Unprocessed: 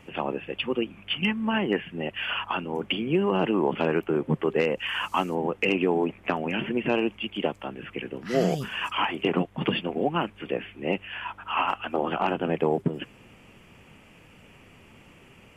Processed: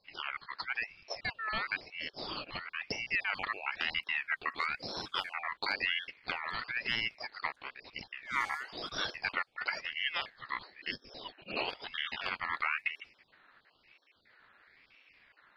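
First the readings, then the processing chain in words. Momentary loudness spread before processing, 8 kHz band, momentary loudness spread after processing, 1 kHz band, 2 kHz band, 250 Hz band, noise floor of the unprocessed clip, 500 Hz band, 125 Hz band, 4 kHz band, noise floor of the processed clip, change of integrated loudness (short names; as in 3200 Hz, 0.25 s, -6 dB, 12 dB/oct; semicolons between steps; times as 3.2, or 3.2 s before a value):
7 LU, n/a, 8 LU, -9.5 dB, -1.5 dB, -25.0 dB, -53 dBFS, -21.5 dB, -22.0 dB, -4.5 dB, -70 dBFS, -8.5 dB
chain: random spectral dropouts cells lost 20%; low-pass opened by the level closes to 1700 Hz, open at -20.5 dBFS; ring modulator with a swept carrier 2000 Hz, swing 25%, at 1 Hz; gain -6.5 dB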